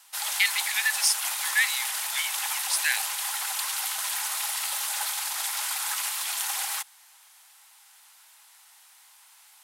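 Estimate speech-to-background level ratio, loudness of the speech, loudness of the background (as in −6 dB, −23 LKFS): 1.0 dB, −26.5 LKFS, −27.5 LKFS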